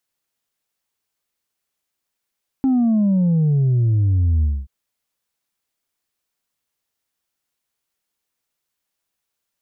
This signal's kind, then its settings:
bass drop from 270 Hz, over 2.03 s, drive 2 dB, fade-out 0.24 s, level −14 dB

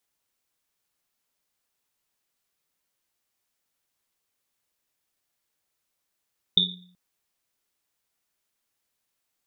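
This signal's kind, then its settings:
drum after Risset length 0.38 s, pitch 180 Hz, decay 0.72 s, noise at 3,600 Hz, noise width 260 Hz, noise 75%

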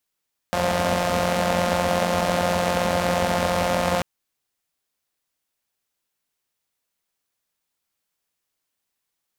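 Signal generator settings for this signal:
pulse-train model of a four-cylinder engine, steady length 3.49 s, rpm 5,300, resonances 89/210/560 Hz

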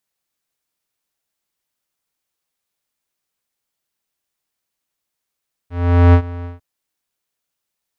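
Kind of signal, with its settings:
subtractive voice square F2 12 dB per octave, low-pass 1,700 Hz, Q 0.72, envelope 0.5 octaves, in 0.10 s, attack 435 ms, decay 0.08 s, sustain −20 dB, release 0.15 s, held 0.75 s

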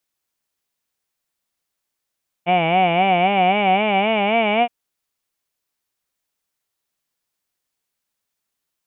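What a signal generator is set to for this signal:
vowel from formants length 2.22 s, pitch 169 Hz, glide +5 semitones, vibrato 3.8 Hz, vibrato depth 1.2 semitones, F1 740 Hz, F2 2,300 Hz, F3 2,900 Hz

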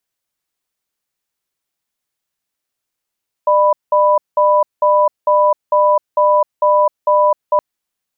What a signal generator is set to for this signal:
tone pair in a cadence 601 Hz, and 990 Hz, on 0.26 s, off 0.19 s, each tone −11.5 dBFS 4.12 s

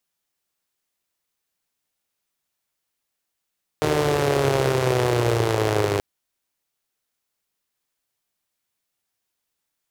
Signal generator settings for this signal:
pulse-train model of a four-cylinder engine, changing speed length 2.18 s, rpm 4,600, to 3,000, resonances 120/400 Hz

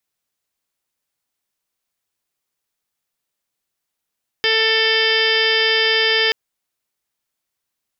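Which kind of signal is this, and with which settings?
steady harmonic partials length 1.88 s, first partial 444 Hz, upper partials −10/−11/1.5/−2/−5/1/−3.5/−15.5/−19/−2/−10 dB, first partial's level −21 dB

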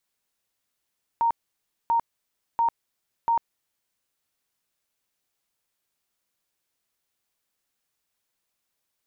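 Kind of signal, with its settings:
tone bursts 927 Hz, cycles 90, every 0.69 s, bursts 4, −18.5 dBFS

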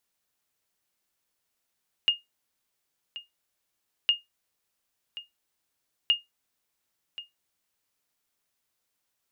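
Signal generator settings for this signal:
ping with an echo 2,840 Hz, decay 0.17 s, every 2.01 s, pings 3, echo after 1.08 s, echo −16.5 dB −13.5 dBFS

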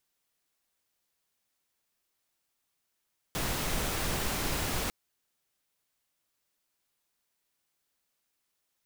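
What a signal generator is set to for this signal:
noise pink, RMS −31.5 dBFS 1.55 s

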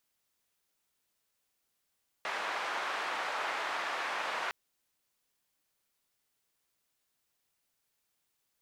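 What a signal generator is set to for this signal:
band-limited noise 740–1,500 Hz, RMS −35.5 dBFS 2.26 s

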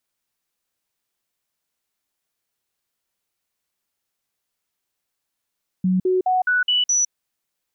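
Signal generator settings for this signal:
stepped sweep 185 Hz up, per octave 1, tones 6, 0.16 s, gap 0.05 s −15.5 dBFS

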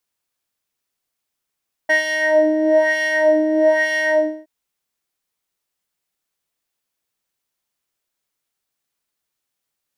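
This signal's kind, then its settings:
subtractive patch with filter wobble D#5, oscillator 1 triangle, oscillator 2 square, interval +19 semitones, oscillator 2 level −11.5 dB, sub −11 dB, noise −28 dB, filter bandpass, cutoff 530 Hz, Q 1.6, filter envelope 1.5 octaves, attack 11 ms, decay 0.13 s, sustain −4 dB, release 0.35 s, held 2.22 s, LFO 1.1 Hz, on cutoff 1.7 octaves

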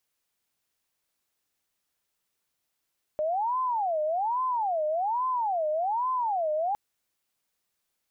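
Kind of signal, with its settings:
siren wail 608–1,030 Hz 1.2 per second sine −24.5 dBFS 3.56 s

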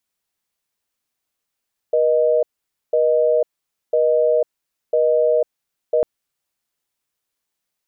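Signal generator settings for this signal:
call progress tone busy tone, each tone −16 dBFS 4.10 s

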